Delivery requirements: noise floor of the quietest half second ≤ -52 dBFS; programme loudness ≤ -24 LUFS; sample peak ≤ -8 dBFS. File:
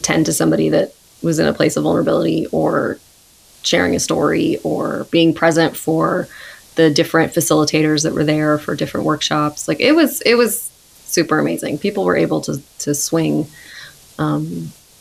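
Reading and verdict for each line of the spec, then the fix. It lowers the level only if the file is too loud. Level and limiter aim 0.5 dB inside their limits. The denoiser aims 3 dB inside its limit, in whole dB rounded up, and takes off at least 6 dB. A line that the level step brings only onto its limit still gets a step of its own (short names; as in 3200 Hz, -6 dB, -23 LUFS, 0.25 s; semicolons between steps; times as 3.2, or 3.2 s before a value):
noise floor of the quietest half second -49 dBFS: fail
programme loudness -16.5 LUFS: fail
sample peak -1.5 dBFS: fail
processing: gain -8 dB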